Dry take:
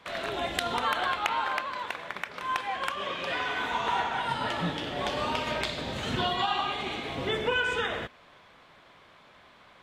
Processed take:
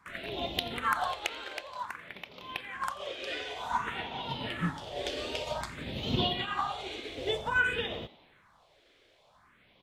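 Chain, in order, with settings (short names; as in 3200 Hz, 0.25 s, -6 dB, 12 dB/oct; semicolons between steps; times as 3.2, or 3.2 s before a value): phaser stages 4, 0.53 Hz, lowest notch 160–1600 Hz; frequency-shifting echo 87 ms, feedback 58%, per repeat +99 Hz, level -19 dB; upward expander 1.5:1, over -40 dBFS; gain +3 dB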